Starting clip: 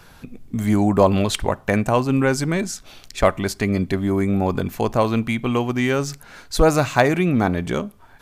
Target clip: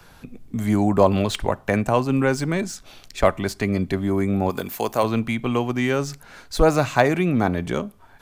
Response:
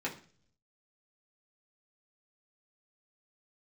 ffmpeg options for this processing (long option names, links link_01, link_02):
-filter_complex "[0:a]asplit=3[link_01][link_02][link_03];[link_01]afade=type=out:start_time=4.49:duration=0.02[link_04];[link_02]aemphasis=mode=production:type=bsi,afade=type=in:start_time=4.49:duration=0.02,afade=type=out:start_time=5.02:duration=0.02[link_05];[link_03]afade=type=in:start_time=5.02:duration=0.02[link_06];[link_04][link_05][link_06]amix=inputs=3:normalize=0,acrossover=split=190|860|4900[link_07][link_08][link_09][link_10];[link_08]crystalizer=i=7.5:c=0[link_11];[link_10]asoftclip=type=tanh:threshold=-29dB[link_12];[link_07][link_11][link_09][link_12]amix=inputs=4:normalize=0,volume=-2dB"